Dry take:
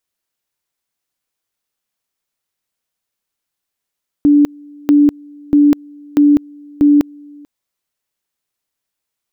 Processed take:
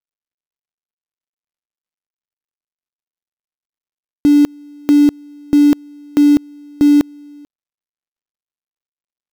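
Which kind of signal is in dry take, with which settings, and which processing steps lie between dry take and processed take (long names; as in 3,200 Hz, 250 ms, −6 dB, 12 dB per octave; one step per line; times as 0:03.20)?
tone at two levels in turn 291 Hz −5.5 dBFS, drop 28.5 dB, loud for 0.20 s, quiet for 0.44 s, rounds 5
gap after every zero crossing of 0.14 ms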